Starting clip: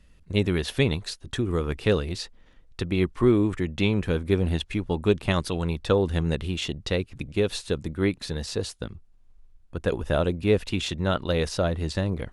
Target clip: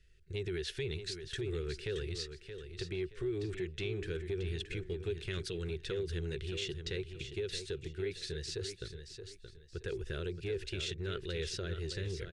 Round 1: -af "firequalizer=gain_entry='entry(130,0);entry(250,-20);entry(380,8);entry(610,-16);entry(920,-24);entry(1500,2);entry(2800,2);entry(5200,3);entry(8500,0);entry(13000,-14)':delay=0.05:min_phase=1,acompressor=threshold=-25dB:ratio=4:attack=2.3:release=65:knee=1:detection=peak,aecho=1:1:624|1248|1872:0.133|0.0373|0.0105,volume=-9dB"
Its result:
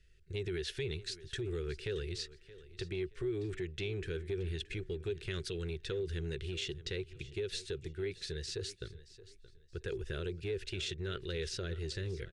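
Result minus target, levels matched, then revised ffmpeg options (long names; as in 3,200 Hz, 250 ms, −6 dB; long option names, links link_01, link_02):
echo-to-direct −8.5 dB
-af "firequalizer=gain_entry='entry(130,0);entry(250,-20);entry(380,8);entry(610,-16);entry(920,-24);entry(1500,2);entry(2800,2);entry(5200,3);entry(8500,0);entry(13000,-14)':delay=0.05:min_phase=1,acompressor=threshold=-25dB:ratio=4:attack=2.3:release=65:knee=1:detection=peak,aecho=1:1:624|1248|1872:0.355|0.0993|0.0278,volume=-9dB"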